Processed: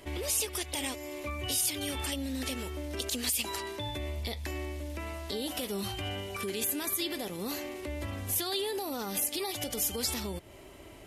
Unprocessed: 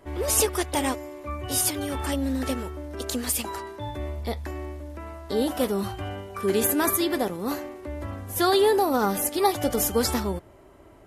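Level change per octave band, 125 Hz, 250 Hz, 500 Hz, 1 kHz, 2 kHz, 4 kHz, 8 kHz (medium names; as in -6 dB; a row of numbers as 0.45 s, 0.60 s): -5.5 dB, -10.0 dB, -11.5 dB, -13.0 dB, -5.5 dB, -1.5 dB, -4.5 dB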